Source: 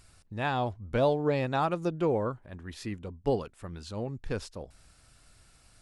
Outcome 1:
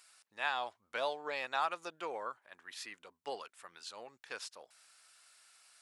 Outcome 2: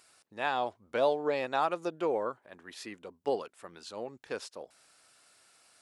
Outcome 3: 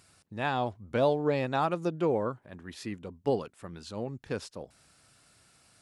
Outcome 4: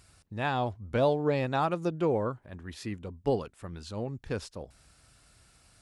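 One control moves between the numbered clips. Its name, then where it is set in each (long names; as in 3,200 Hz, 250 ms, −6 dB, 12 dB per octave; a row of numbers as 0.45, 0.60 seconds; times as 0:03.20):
high-pass filter, corner frequency: 1,100, 420, 130, 45 Hertz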